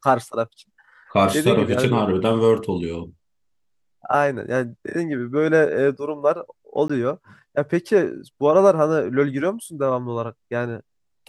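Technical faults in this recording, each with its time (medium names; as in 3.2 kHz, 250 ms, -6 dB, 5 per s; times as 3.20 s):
6.88–6.89 s: dropout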